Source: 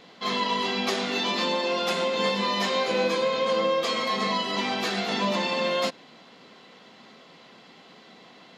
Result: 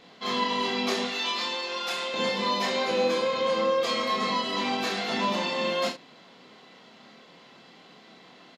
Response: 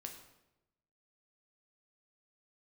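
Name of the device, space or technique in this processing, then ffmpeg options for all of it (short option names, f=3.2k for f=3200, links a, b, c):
slapback doubling: -filter_complex "[0:a]asettb=1/sr,asplit=3[a][b][c];[a]atrim=end=1.074[d];[b]atrim=start=1.07:end=2.14,asetpts=PTS-STARTPTS,afade=t=in:d=0.004:c=qsin,afade=t=out:st=1.066:d=0.004:c=qsin,highpass=f=1k:p=1[e];[c]atrim=start=2.136[f];[d][e]acrossfade=d=0.004:c1=hsin:c2=qsin[g];[g][f]acrossfade=d=0.004:c1=qsin:c2=hsin,asplit=3[h][i][j];[i]adelay=28,volume=-4dB[k];[j]adelay=65,volume=-9.5dB[l];[h][k][l]amix=inputs=3:normalize=0,volume=-3dB"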